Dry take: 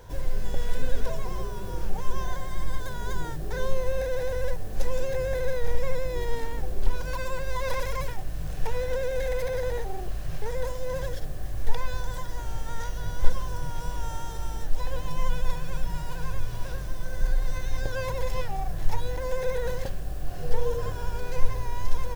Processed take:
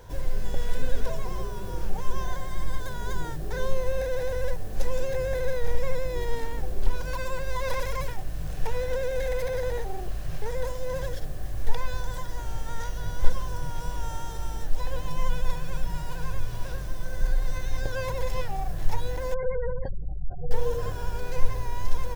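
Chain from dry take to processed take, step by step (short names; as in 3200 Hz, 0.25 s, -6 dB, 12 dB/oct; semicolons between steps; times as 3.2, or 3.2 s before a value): 19.34–20.51 spectral gate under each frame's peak -25 dB strong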